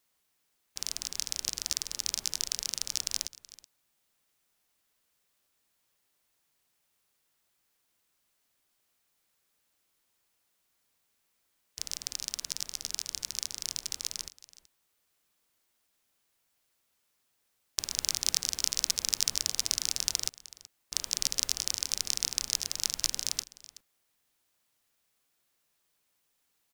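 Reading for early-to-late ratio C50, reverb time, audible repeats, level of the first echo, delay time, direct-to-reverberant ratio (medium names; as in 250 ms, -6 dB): no reverb, no reverb, 1, -19.0 dB, 376 ms, no reverb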